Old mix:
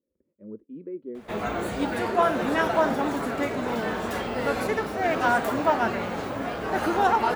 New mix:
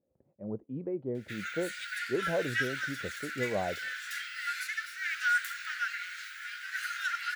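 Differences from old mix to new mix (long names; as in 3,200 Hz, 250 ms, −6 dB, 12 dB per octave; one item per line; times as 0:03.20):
speech: remove phaser with its sweep stopped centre 310 Hz, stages 4
background: add Chebyshev high-pass with heavy ripple 1,400 Hz, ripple 3 dB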